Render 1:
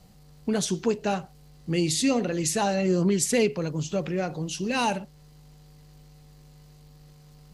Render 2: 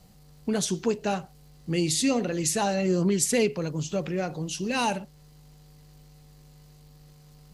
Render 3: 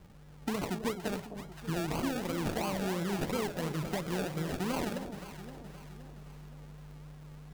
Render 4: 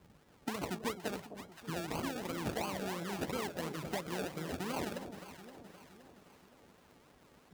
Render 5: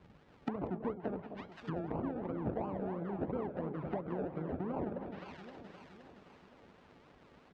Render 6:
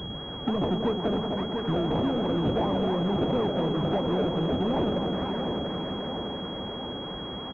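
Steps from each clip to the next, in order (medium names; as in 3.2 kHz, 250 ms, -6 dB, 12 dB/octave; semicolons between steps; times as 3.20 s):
treble shelf 7.8 kHz +4 dB; trim -1 dB
compression, threshold -31 dBFS, peak gain reduction 12 dB; decimation with a swept rate 34×, swing 60% 2.9 Hz; echo whose repeats swap between lows and highs 260 ms, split 850 Hz, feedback 68%, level -8 dB
high-pass 65 Hz; hum notches 50/100/150 Hz; harmonic-percussive split percussive +8 dB; trim -8.5 dB
low-pass 3.6 kHz 12 dB/octave; low-pass that closes with the level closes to 790 Hz, closed at -36 dBFS; delay 189 ms -18 dB; trim +2 dB
feedback delay 690 ms, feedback 45%, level -10 dB; power-law waveshaper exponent 0.5; class-D stage that switches slowly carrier 3.3 kHz; trim +5 dB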